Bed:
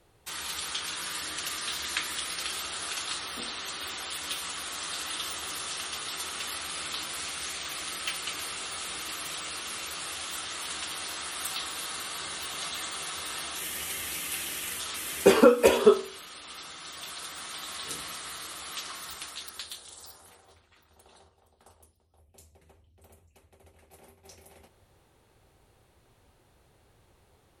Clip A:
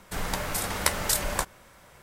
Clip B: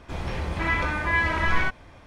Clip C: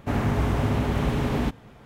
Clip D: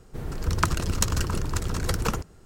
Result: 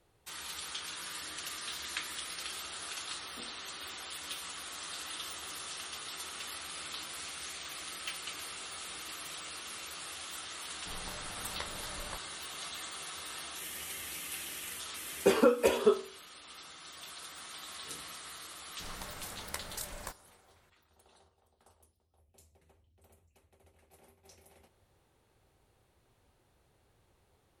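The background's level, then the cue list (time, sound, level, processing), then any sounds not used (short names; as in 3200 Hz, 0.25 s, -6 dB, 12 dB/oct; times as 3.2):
bed -7 dB
10.74 add A -14.5 dB + air absorption 170 m
18.68 add A -15.5 dB
not used: B, C, D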